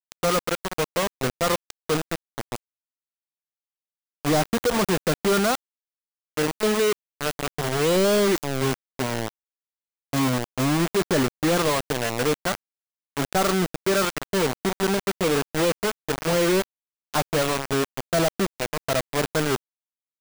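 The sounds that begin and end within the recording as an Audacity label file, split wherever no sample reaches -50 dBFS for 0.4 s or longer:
4.250000	5.550000	sound
6.370000	9.290000	sound
10.130000	12.550000	sound
13.170000	16.640000	sound
17.140000	19.560000	sound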